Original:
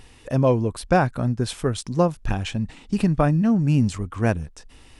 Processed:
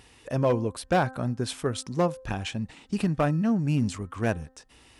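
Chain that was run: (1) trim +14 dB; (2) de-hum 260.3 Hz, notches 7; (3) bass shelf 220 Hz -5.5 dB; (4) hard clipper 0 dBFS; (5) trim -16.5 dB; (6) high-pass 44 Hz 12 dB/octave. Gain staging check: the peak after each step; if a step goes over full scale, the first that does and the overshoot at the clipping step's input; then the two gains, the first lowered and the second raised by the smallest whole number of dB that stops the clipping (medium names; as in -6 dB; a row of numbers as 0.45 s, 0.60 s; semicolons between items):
+9.0 dBFS, +9.0 dBFS, +6.5 dBFS, 0.0 dBFS, -16.5 dBFS, -13.0 dBFS; step 1, 6.5 dB; step 1 +7 dB, step 5 -9.5 dB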